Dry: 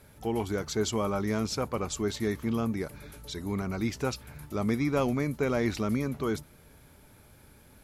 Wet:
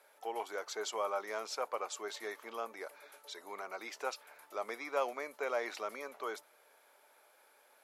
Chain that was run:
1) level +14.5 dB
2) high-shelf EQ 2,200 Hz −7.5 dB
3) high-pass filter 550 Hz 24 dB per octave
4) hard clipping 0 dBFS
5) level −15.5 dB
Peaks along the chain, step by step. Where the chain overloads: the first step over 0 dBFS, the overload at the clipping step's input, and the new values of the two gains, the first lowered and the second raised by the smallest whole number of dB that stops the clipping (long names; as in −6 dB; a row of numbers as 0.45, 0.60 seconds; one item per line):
−1.5, −2.0, −5.0, −5.0, −20.5 dBFS
no step passes full scale